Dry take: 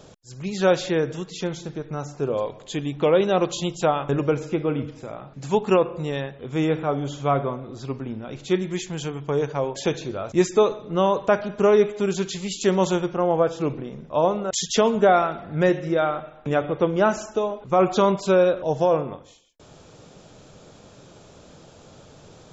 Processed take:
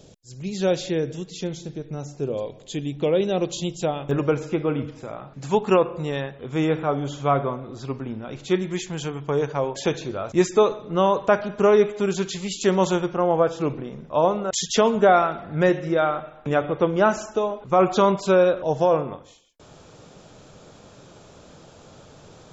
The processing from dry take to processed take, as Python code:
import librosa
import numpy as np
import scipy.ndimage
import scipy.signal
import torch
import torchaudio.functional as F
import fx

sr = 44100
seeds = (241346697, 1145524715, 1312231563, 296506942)

y = fx.peak_eq(x, sr, hz=1200.0, db=fx.steps((0.0, -11.5), (4.11, 2.0)), octaves=1.4)